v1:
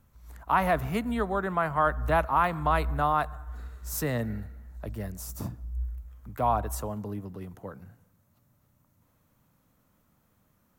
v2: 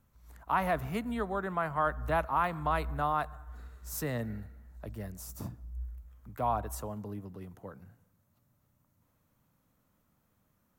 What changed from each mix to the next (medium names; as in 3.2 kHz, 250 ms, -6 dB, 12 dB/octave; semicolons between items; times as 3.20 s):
speech -5.0 dB; background -7.0 dB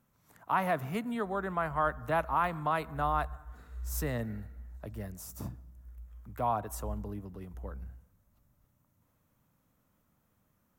background: entry +1.10 s; master: add peaking EQ 4.3 kHz -2.5 dB 0.26 oct